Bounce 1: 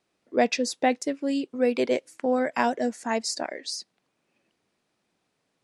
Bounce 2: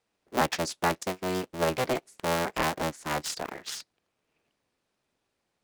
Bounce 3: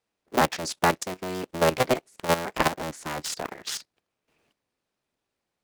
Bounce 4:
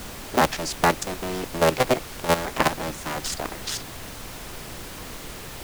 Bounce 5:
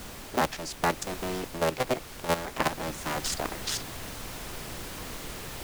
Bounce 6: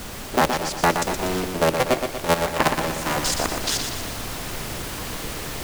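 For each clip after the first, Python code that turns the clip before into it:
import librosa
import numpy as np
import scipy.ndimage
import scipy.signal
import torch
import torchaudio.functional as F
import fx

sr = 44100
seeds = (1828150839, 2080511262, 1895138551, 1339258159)

y1 = fx.cycle_switch(x, sr, every=3, mode='inverted')
y1 = F.gain(torch.from_numpy(y1), -4.0).numpy()
y2 = fx.level_steps(y1, sr, step_db=13)
y2 = F.gain(torch.from_numpy(y2), 7.5).numpy()
y3 = fx.dmg_noise_colour(y2, sr, seeds[0], colour='pink', level_db=-39.0)
y3 = F.gain(torch.from_numpy(y3), 2.0).numpy()
y4 = fx.rider(y3, sr, range_db=4, speed_s=0.5)
y4 = F.gain(torch.from_numpy(y4), -5.5).numpy()
y5 = fx.echo_feedback(y4, sr, ms=120, feedback_pct=53, wet_db=-6.5)
y5 = F.gain(torch.from_numpy(y5), 7.0).numpy()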